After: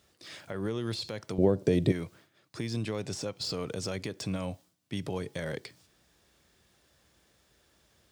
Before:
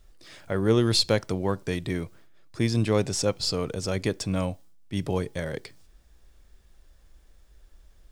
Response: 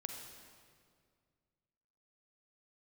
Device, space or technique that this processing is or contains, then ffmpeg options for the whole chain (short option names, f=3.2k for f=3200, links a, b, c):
broadcast voice chain: -filter_complex "[0:a]highpass=f=91:w=0.5412,highpass=f=91:w=1.3066,deesser=0.7,acompressor=threshold=-29dB:ratio=4,equalizer=f=3.7k:t=o:w=2:g=3,alimiter=limit=-23.5dB:level=0:latency=1:release=134,asettb=1/sr,asplit=3[a][b][c];[a]atrim=end=1.384[d];[b]atrim=start=1.38:end=1.92,asetpts=PTS-STARTPTS,afade=t=in:d=0.004:c=qsin,afade=t=out:st=0.536:d=0.004:c=qsin,lowshelf=f=770:t=q:w=1.5:g=10.5[e];[c]atrim=start=1.916[f];[d][e]acrossfade=d=0.004:c1=hsin:c2=qsin[g];[g][f]acrossfade=d=0.004:c1=qsin:c2=hsin"